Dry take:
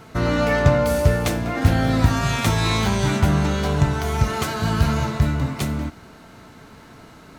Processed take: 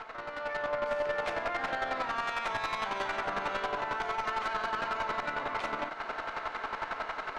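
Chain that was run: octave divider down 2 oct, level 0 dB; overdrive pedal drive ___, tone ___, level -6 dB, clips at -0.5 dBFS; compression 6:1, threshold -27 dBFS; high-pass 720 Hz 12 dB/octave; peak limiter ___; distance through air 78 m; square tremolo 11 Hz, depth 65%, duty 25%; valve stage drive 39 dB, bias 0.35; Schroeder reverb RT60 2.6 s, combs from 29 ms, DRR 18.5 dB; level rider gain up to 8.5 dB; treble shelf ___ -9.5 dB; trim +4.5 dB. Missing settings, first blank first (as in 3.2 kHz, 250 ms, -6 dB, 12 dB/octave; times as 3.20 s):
17 dB, 1.6 kHz, -27.5 dBFS, 3.9 kHz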